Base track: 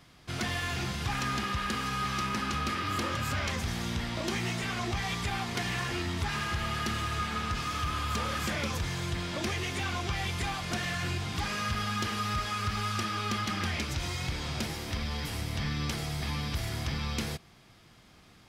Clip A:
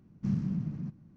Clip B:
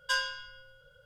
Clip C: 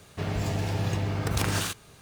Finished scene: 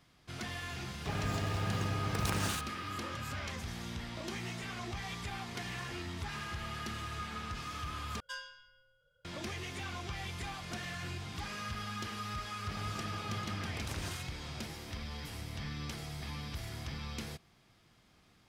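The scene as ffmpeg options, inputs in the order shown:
-filter_complex "[3:a]asplit=2[s0][s1];[0:a]volume=0.376[s2];[s1]aresample=32000,aresample=44100[s3];[s2]asplit=2[s4][s5];[s4]atrim=end=8.204[s6];[2:a]atrim=end=1.05,asetpts=PTS-STARTPTS,volume=0.2[s7];[s5]atrim=start=9.246[s8];[s0]atrim=end=2.01,asetpts=PTS-STARTPTS,volume=0.447,afade=t=in:d=0.004:c=hsin,afade=t=out:st=2.006:d=0.004:c=hsin,adelay=880[s9];[s3]atrim=end=2.01,asetpts=PTS-STARTPTS,volume=0.178,afade=t=in:d=0.004:c=hsin,afade=t=out:st=2.006:d=0.004:c=hsin,adelay=12500[s10];[s6][s7]acrossfade=d=0.004:c1=hsin:c2=hsin[s11];[s11][s8]acrossfade=d=0.004:c1=hsin:c2=hsin[s12];[s12][s9][s10]amix=inputs=3:normalize=0"

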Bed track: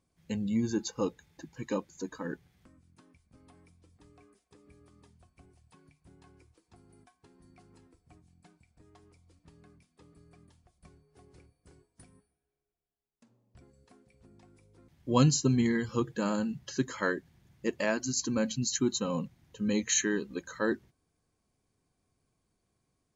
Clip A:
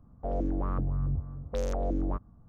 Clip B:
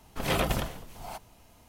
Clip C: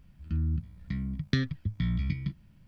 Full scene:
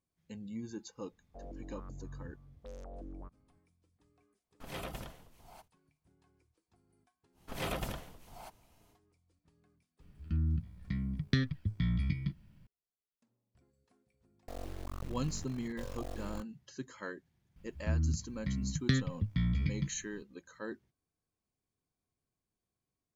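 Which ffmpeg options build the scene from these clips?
-filter_complex "[1:a]asplit=2[s0][s1];[2:a]asplit=2[s2][s3];[3:a]asplit=2[s4][s5];[0:a]volume=0.237[s6];[s2]agate=range=0.0891:threshold=0.00251:ratio=16:release=100:detection=peak[s7];[s1]acrusher=bits=4:dc=4:mix=0:aa=0.000001[s8];[s0]atrim=end=2.48,asetpts=PTS-STARTPTS,volume=0.141,afade=t=in:d=0.004:c=hsin,afade=t=out:st=2.476:d=0.004:c=hsin,adelay=1110[s9];[s7]atrim=end=1.68,asetpts=PTS-STARTPTS,volume=0.178,afade=t=in:d=0.004:c=hsin,afade=t=out:st=1.676:d=0.004:c=hsin,adelay=4440[s10];[s3]atrim=end=1.68,asetpts=PTS-STARTPTS,volume=0.335,afade=t=in:d=0.1,afade=t=out:st=1.58:d=0.1,adelay=7320[s11];[s4]atrim=end=2.67,asetpts=PTS-STARTPTS,volume=0.75,afade=t=in:d=0.004:c=hsin,afade=t=out:st=2.666:d=0.004:c=hsin,adelay=10000[s12];[s8]atrim=end=2.48,asetpts=PTS-STARTPTS,volume=0.335,afade=t=in:d=0.004:c=hsin,afade=t=out:st=2.476:d=0.004:c=hsin,adelay=14240[s13];[s5]atrim=end=2.67,asetpts=PTS-STARTPTS,volume=0.794,afade=t=in:d=0.004:c=hsin,afade=t=out:st=2.666:d=0.004:c=hsin,adelay=17560[s14];[s6][s9][s10][s11][s12][s13][s14]amix=inputs=7:normalize=0"

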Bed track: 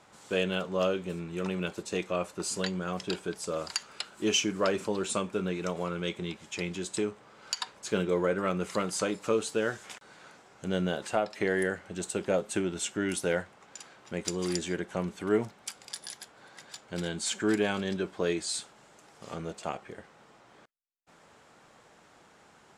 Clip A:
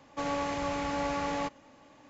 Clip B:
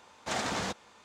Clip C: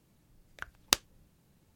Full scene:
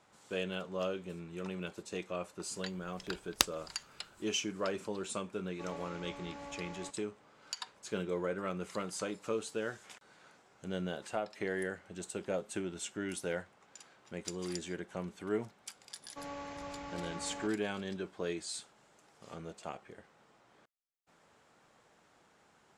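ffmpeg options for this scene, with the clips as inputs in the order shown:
-filter_complex "[1:a]asplit=2[s0][s1];[0:a]volume=0.398[s2];[3:a]atrim=end=1.75,asetpts=PTS-STARTPTS,volume=0.75,afade=t=in:d=0.004:c=hsin,afade=t=out:st=1.746:d=0.004:c=hsin,adelay=2480[s3];[s0]atrim=end=2.09,asetpts=PTS-STARTPTS,volume=0.168,afade=t=in:d=0.004:c=hsin,afade=t=out:st=2.086:d=0.004:c=hsin,adelay=5420[s4];[s1]atrim=end=2.09,asetpts=PTS-STARTPTS,volume=0.251,afade=t=in:d=0.004:c=hsin,afade=t=out:st=2.086:d=0.004:c=hsin,adelay=15990[s5];[s2][s3][s4][s5]amix=inputs=4:normalize=0"

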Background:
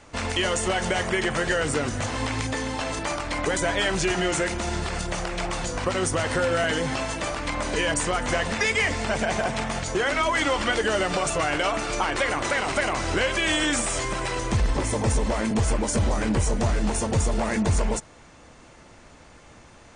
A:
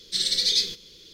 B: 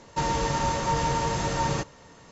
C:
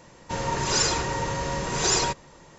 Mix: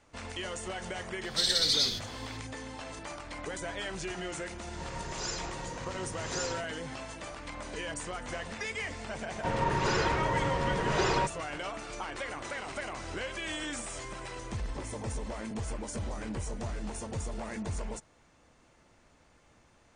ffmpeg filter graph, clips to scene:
-filter_complex "[3:a]asplit=2[s0][s1];[0:a]volume=0.211[s2];[1:a]alimiter=level_in=5.62:limit=0.891:release=50:level=0:latency=1[s3];[s1]lowpass=2600[s4];[s3]atrim=end=1.13,asetpts=PTS-STARTPTS,volume=0.158,afade=t=in:d=0.004:c=hsin,afade=t=out:st=1.126:d=0.004:c=hsin,adelay=1240[s5];[s0]atrim=end=2.58,asetpts=PTS-STARTPTS,volume=0.2,afade=t=in:d=0.004:c=hsin,afade=t=out:st=2.576:d=0.004:c=hsin,adelay=4480[s6];[s4]atrim=end=2.58,asetpts=PTS-STARTPTS,volume=0.841,afade=t=in:d=0.004:c=hsin,afade=t=out:st=2.576:d=0.004:c=hsin,adelay=403074S[s7];[s2][s5][s6][s7]amix=inputs=4:normalize=0"

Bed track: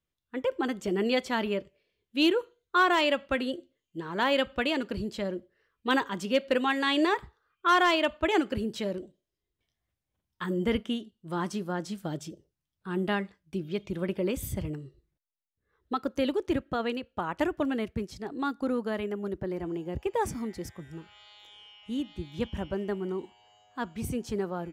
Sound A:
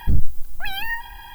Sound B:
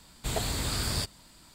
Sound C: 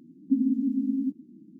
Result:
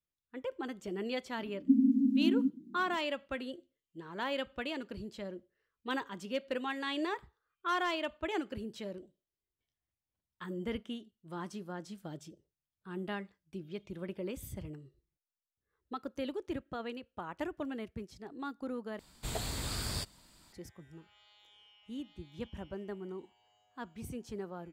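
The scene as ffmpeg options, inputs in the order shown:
-filter_complex "[0:a]volume=0.316,asplit=2[s0][s1];[s0]atrim=end=18.994[s2];[2:a]atrim=end=1.54,asetpts=PTS-STARTPTS,volume=0.473[s3];[s1]atrim=start=20.526[s4];[3:a]atrim=end=1.59,asetpts=PTS-STARTPTS,volume=0.841,afade=t=in:d=0.004:c=hsin,afade=t=out:st=1.586:d=0.004:c=hsin,adelay=1380[s5];[s2][s3]acrossfade=d=0.004:c1=hsin:c2=hsin[s6];[s6][s4]acrossfade=d=0.004:c1=hsin:c2=hsin[s7];[s7][s5]amix=inputs=2:normalize=0"

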